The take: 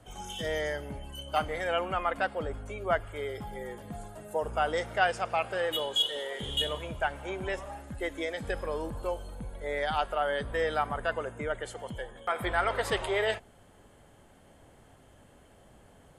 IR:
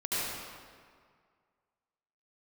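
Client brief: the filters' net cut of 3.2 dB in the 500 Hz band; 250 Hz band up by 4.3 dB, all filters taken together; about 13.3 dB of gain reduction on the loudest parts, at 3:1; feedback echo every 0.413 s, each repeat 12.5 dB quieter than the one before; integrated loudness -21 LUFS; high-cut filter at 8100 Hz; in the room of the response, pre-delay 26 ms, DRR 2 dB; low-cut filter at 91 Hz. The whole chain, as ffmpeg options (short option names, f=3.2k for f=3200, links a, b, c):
-filter_complex "[0:a]highpass=91,lowpass=8.1k,equalizer=f=250:t=o:g=8.5,equalizer=f=500:t=o:g=-6,acompressor=threshold=-41dB:ratio=3,aecho=1:1:413|826|1239:0.237|0.0569|0.0137,asplit=2[a][b];[1:a]atrim=start_sample=2205,adelay=26[c];[b][c]afir=irnorm=-1:irlink=0,volume=-10.5dB[d];[a][d]amix=inputs=2:normalize=0,volume=19dB"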